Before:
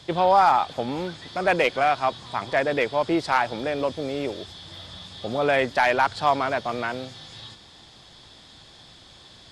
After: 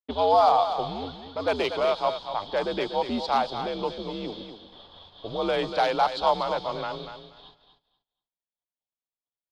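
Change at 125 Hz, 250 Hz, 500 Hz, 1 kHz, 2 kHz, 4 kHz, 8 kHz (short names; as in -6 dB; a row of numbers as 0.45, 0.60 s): -6.0 dB, -4.0 dB, -1.5 dB, -2.5 dB, -10.0 dB, -0.5 dB, n/a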